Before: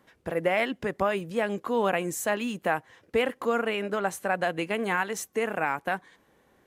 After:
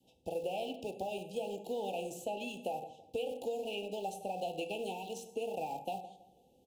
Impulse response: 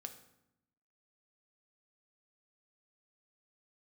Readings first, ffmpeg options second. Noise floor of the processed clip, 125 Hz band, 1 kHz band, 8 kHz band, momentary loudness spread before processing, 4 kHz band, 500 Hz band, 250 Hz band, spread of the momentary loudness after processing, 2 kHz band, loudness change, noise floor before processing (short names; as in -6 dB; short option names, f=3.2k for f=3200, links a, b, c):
-68 dBFS, -12.5 dB, -10.5 dB, -13.0 dB, 4 LU, -7.5 dB, -9.5 dB, -13.0 dB, 4 LU, -20.0 dB, -11.0 dB, -65 dBFS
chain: -filter_complex "[0:a]adynamicequalizer=threshold=0.01:dfrequency=550:dqfactor=1.7:tfrequency=550:tqfactor=1.7:attack=5:release=100:ratio=0.375:range=2:mode=cutabove:tftype=bell[a];[1:a]atrim=start_sample=2205,afade=t=out:st=0.17:d=0.01,atrim=end_sample=7938[b];[a][b]afir=irnorm=-1:irlink=0,asplit=2[c][d];[d]aeval=exprs='val(0)*gte(abs(val(0)),0.02)':c=same,volume=-12dB[e];[c][e]amix=inputs=2:normalize=0,acompressor=threshold=-29dB:ratio=4,asuperstop=centerf=1500:order=20:qfactor=0.88,acrossover=split=370|3500[f][g][h];[f]acompressor=threshold=-50dB:ratio=4[i];[g]acompressor=threshold=-34dB:ratio=4[j];[h]acompressor=threshold=-53dB:ratio=4[k];[i][j][k]amix=inputs=3:normalize=0,asplit=2[l][m];[m]adelay=164,lowpass=f=1.4k:p=1,volume=-13.5dB,asplit=2[n][o];[o]adelay=164,lowpass=f=1.4k:p=1,volume=0.35,asplit=2[p][q];[q]adelay=164,lowpass=f=1.4k:p=1,volume=0.35[r];[l][n][p][r]amix=inputs=4:normalize=0"